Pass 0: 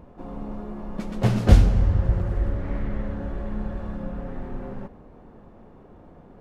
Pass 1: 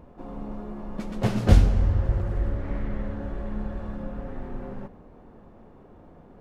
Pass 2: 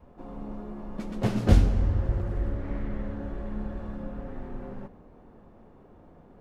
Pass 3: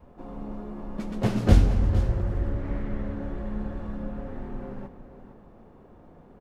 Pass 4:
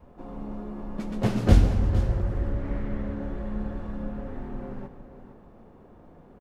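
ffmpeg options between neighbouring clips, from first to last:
ffmpeg -i in.wav -af "bandreject=frequency=60:width_type=h:width=6,bandreject=frequency=120:width_type=h:width=6,bandreject=frequency=180:width_type=h:width=6,volume=-1.5dB" out.wav
ffmpeg -i in.wav -af "adynamicequalizer=threshold=0.0126:dfrequency=290:dqfactor=1.6:tfrequency=290:tqfactor=1.6:attack=5:release=100:ratio=0.375:range=2:mode=boostabove:tftype=bell,volume=-3dB" out.wav
ffmpeg -i in.wav -af "aecho=1:1:459:0.237,volume=1.5dB" out.wav
ffmpeg -i in.wav -af "aecho=1:1:143:0.168" out.wav

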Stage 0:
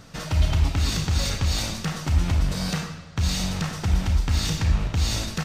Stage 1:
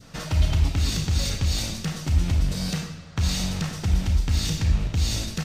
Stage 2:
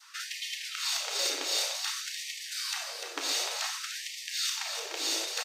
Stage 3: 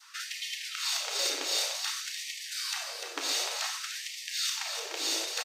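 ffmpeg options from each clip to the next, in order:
ffmpeg -i in.wav -af "adynamicequalizer=threshold=0.00447:dfrequency=1100:dqfactor=0.75:tfrequency=1100:tqfactor=0.75:attack=5:release=100:ratio=0.375:range=3.5:mode=cutabove:tftype=bell" out.wav
ffmpeg -i in.wav -af "aecho=1:1:298|596|894|1192|1490:0.473|0.203|0.0875|0.0376|0.0162,afftfilt=real='re*gte(b*sr/1024,290*pow(1800/290,0.5+0.5*sin(2*PI*0.54*pts/sr)))':imag='im*gte(b*sr/1024,290*pow(1800/290,0.5+0.5*sin(2*PI*0.54*pts/sr)))':win_size=1024:overlap=0.75" out.wav
ffmpeg -i in.wav -af "aecho=1:1:103|206|309:0.0794|0.0342|0.0147" out.wav

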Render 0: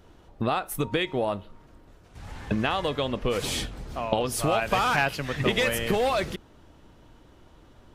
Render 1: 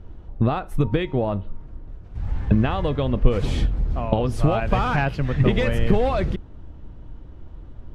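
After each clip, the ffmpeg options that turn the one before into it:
ffmpeg -i in.wav -af "aemphasis=mode=reproduction:type=riaa" out.wav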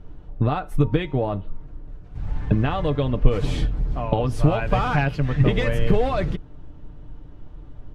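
ffmpeg -i in.wav -af "aecho=1:1:6.8:0.43,volume=-1dB" out.wav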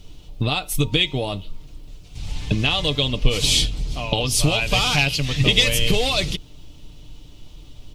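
ffmpeg -i in.wav -af "aexciter=amount=12.7:drive=5.9:freq=2500,volume=-2dB" out.wav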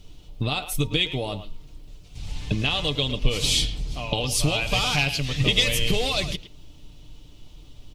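ffmpeg -i in.wav -filter_complex "[0:a]asplit=2[link_01][link_02];[link_02]adelay=110,highpass=300,lowpass=3400,asoftclip=type=hard:threshold=-10.5dB,volume=-11dB[link_03];[link_01][link_03]amix=inputs=2:normalize=0,volume=-4dB" out.wav

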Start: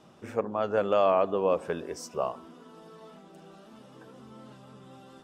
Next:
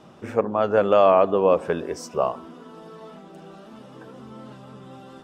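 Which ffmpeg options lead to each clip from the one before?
ffmpeg -i in.wav -af "highshelf=frequency=4100:gain=-6,volume=7.5dB" out.wav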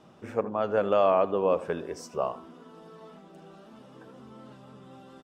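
ffmpeg -i in.wav -af "aecho=1:1:80:0.133,volume=-6.5dB" out.wav

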